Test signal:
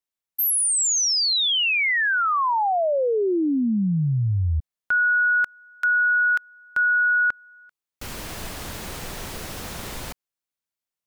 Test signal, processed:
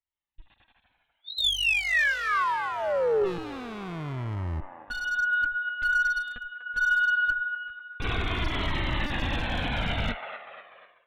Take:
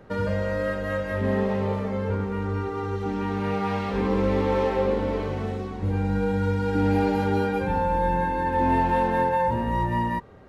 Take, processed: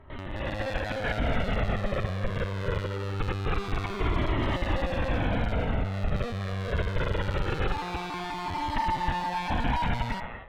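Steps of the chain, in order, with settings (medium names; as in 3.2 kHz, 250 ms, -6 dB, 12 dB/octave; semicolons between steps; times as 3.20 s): valve stage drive 38 dB, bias 0.75; LPC vocoder at 8 kHz pitch kept; on a send: feedback echo behind a band-pass 245 ms, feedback 49%, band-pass 1.2 kHz, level -7 dB; on the sum: dynamic bell 840 Hz, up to -4 dB, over -50 dBFS, Q 1.1; level rider gain up to 13.5 dB; in parallel at 0 dB: peak limiter -20.5 dBFS; on the sum: one-sided clip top -19 dBFS; Shepard-style flanger falling 0.23 Hz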